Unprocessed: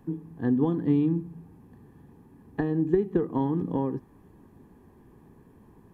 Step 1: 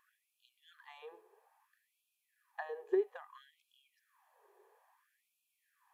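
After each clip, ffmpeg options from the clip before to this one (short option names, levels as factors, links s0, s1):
-af "afftfilt=real='re*gte(b*sr/1024,350*pow(2400/350,0.5+0.5*sin(2*PI*0.6*pts/sr)))':imag='im*gte(b*sr/1024,350*pow(2400/350,0.5+0.5*sin(2*PI*0.6*pts/sr)))':win_size=1024:overlap=0.75,volume=0.596"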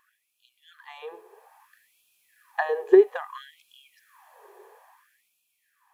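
-af "dynaudnorm=f=260:g=9:m=3.16,volume=2.11"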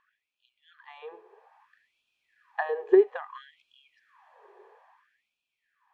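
-af "lowpass=3300,volume=0.668"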